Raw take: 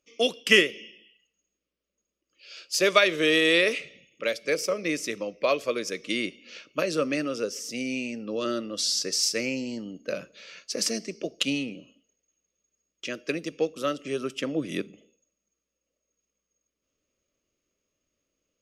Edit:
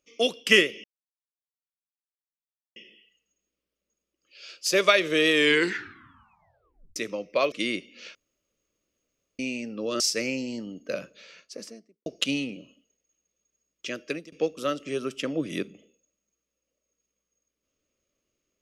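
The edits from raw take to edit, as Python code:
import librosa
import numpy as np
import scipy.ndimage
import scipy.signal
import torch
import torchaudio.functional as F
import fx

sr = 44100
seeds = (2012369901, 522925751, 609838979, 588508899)

y = fx.studio_fade_out(x, sr, start_s=10.2, length_s=1.05)
y = fx.edit(y, sr, fx.insert_silence(at_s=0.84, length_s=1.92),
    fx.tape_stop(start_s=3.37, length_s=1.67),
    fx.cut(start_s=5.6, length_s=0.42),
    fx.room_tone_fill(start_s=6.65, length_s=1.24),
    fx.cut(start_s=8.5, length_s=0.69),
    fx.fade_out_to(start_s=13.13, length_s=0.38, curve='qsin', floor_db=-23.5), tone=tone)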